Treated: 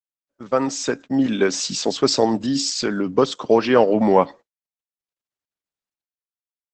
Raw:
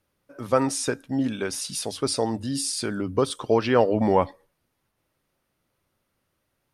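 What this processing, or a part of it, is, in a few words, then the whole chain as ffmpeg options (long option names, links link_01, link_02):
video call: -filter_complex "[0:a]asettb=1/sr,asplit=3[link_01][link_02][link_03];[link_01]atrim=end=1.264[link_04];[link_02]atrim=start=1.26:end=1.94,asetpts=PTS-STARTPTS,afade=type=in:duration=0.004:curve=qsin,afade=type=out:start_time=0.676:duration=0.004:curve=qsin,adynamicequalizer=threshold=0.00794:dfrequency=290:dqfactor=1.2:tfrequency=290:tqfactor=1.2:attack=5:release=100:ratio=0.375:range=2.5:mode=boostabove:tftype=bell[link_05];[link_03]atrim=start=1.936[link_06];[link_04][link_05]acrossfade=duration=0.004:curve1=hsin:curve2=qsin[link_07];[link_07][link_06]acrossfade=duration=0.004:curve1=qsin:curve2=hsin,asplit=3[link_08][link_09][link_10];[link_08]afade=type=out:start_time=2.55:duration=0.02[link_11];[link_09]lowpass=10000,afade=type=in:start_time=2.55:duration=0.02,afade=type=out:start_time=3.58:duration=0.02[link_12];[link_10]afade=type=in:start_time=3.58:duration=0.02[link_13];[link_11][link_12][link_13]amix=inputs=3:normalize=0,highpass=frequency=150:width=0.5412,highpass=frequency=150:width=1.3066,dynaudnorm=framelen=150:gausssize=11:maxgain=10.5dB,agate=range=-35dB:threshold=-36dB:ratio=16:detection=peak" -ar 48000 -c:a libopus -b:a 12k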